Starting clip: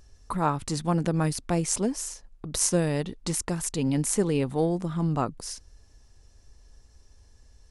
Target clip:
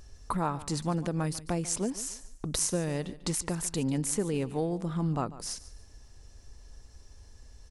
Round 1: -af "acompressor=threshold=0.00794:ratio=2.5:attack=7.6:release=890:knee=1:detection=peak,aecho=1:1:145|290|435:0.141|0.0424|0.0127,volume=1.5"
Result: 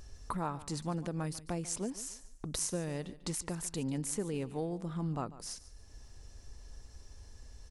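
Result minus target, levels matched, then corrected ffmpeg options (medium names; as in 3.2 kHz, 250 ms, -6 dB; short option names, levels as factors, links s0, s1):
compression: peak gain reduction +6 dB
-af "acompressor=threshold=0.0251:ratio=2.5:attack=7.6:release=890:knee=1:detection=peak,aecho=1:1:145|290|435:0.141|0.0424|0.0127,volume=1.5"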